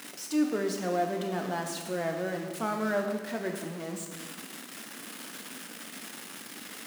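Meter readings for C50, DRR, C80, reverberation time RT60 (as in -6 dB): 5.5 dB, 3.0 dB, 7.0 dB, 1.5 s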